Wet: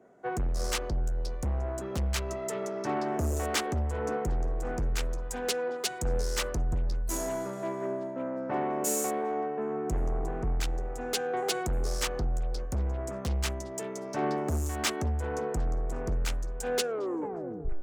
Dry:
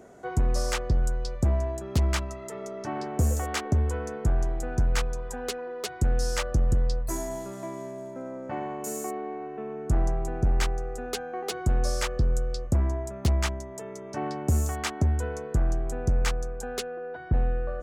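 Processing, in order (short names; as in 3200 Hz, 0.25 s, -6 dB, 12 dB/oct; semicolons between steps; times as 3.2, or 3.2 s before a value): tape stop at the end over 0.99 s; in parallel at +3 dB: compressor, threshold -31 dBFS, peak gain reduction 11.5 dB; on the sum: soft clip -24 dBFS, distortion -9 dB; on a send: delay with a stepping band-pass 0.361 s, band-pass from 370 Hz, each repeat 0.7 oct, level -5.5 dB; on the sum: three-band expander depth 100%; gain -2 dB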